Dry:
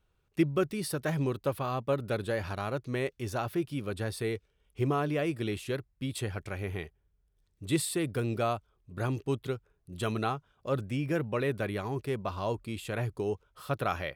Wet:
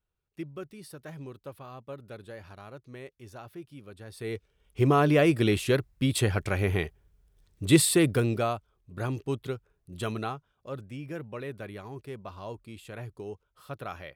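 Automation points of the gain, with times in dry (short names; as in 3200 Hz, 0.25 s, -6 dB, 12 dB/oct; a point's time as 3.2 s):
4.05 s -12 dB
4.35 s +0.5 dB
5.11 s +9 dB
8.04 s +9 dB
8.54 s 0 dB
10.02 s 0 dB
10.76 s -7.5 dB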